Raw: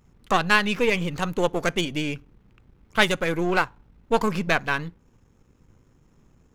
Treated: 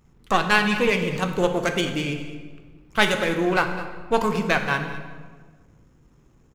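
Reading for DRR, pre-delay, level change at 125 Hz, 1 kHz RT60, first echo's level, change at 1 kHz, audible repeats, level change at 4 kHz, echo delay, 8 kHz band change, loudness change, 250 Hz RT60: 5.0 dB, 3 ms, +1.5 dB, 1.4 s, −15.5 dB, +1.5 dB, 1, +1.0 dB, 207 ms, +1.0 dB, +1.0 dB, 1.8 s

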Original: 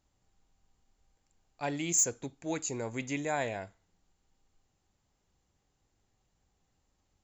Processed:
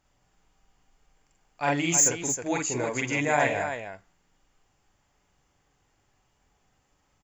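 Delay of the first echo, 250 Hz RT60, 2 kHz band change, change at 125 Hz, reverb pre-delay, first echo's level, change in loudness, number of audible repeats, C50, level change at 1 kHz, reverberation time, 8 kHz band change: 41 ms, no reverb audible, +11.5 dB, +7.0 dB, no reverb audible, −4.0 dB, +7.0 dB, 2, no reverb audible, +10.0 dB, no reverb audible, +6.5 dB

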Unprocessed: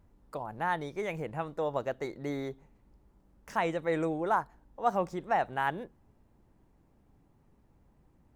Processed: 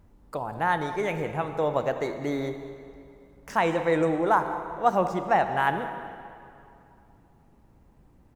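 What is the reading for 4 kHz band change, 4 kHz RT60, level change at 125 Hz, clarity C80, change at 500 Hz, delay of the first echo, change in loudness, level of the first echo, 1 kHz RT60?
+6.5 dB, 2.0 s, +6.5 dB, 9.0 dB, +7.0 dB, 199 ms, +6.5 dB, −17.0 dB, 2.6 s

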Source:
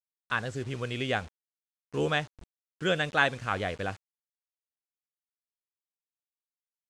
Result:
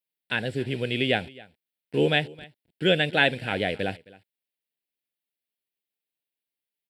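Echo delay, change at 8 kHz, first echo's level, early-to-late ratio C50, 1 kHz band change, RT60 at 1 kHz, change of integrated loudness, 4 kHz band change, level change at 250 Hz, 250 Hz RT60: 266 ms, can't be measured, −22.0 dB, no reverb audible, 0.0 dB, no reverb audible, +5.0 dB, +8.0 dB, +7.0 dB, no reverb audible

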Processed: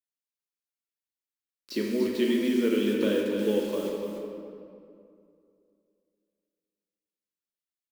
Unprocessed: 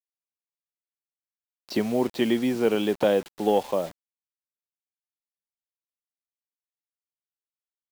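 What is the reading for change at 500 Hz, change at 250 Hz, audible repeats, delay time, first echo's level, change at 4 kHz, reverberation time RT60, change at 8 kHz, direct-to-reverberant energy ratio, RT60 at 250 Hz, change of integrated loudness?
−3.0 dB, 0.0 dB, 1, 293 ms, −8.0 dB, −1.5 dB, 2.4 s, −1.5 dB, −1.5 dB, 2.8 s, −2.5 dB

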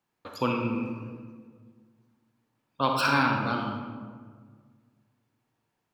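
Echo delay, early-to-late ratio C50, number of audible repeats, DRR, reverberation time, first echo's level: no echo audible, 2.0 dB, no echo audible, 1.0 dB, 1.7 s, no echo audible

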